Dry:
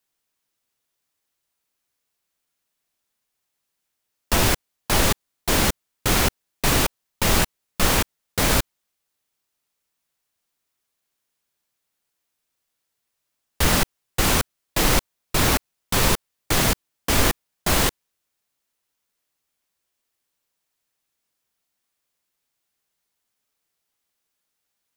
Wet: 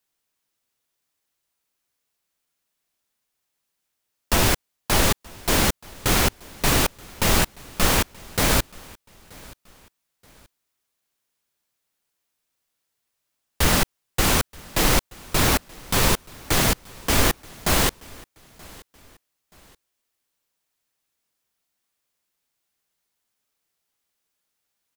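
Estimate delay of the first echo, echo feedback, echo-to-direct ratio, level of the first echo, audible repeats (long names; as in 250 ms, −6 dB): 928 ms, 35%, −23.5 dB, −24.0 dB, 2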